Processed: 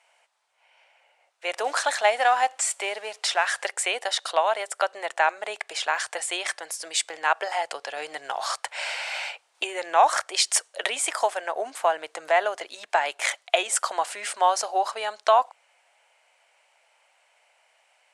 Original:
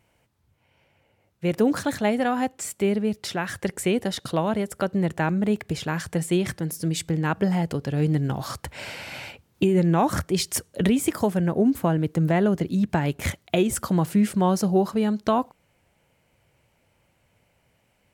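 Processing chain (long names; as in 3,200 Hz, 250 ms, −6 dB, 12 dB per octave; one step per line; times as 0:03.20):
0:01.64–0:03.71: mu-law and A-law mismatch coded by mu
elliptic band-pass filter 680–9,100 Hz, stop band 50 dB
level +6.5 dB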